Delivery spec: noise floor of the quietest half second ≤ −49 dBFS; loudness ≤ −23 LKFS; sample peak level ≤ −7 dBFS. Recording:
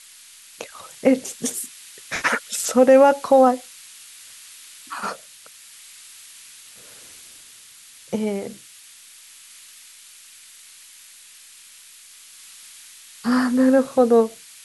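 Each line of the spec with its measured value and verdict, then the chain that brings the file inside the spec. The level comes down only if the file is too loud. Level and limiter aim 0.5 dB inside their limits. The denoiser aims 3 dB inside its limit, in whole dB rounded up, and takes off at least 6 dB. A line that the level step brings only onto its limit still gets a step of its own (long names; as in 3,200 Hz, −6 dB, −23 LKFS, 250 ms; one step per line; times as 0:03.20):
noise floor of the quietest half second −46 dBFS: out of spec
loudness −19.5 LKFS: out of spec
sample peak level −4.0 dBFS: out of spec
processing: level −4 dB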